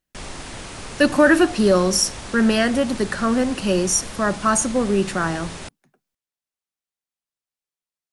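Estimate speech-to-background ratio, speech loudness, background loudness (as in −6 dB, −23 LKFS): 15.0 dB, −19.5 LKFS, −34.5 LKFS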